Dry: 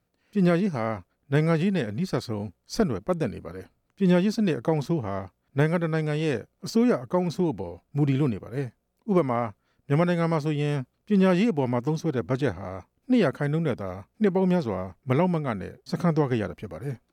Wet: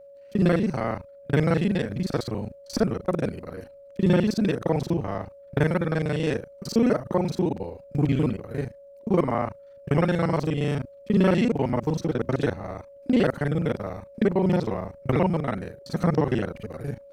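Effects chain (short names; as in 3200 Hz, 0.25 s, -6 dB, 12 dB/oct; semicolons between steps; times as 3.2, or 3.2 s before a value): local time reversal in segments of 35 ms; whine 560 Hz -46 dBFS; gain +1 dB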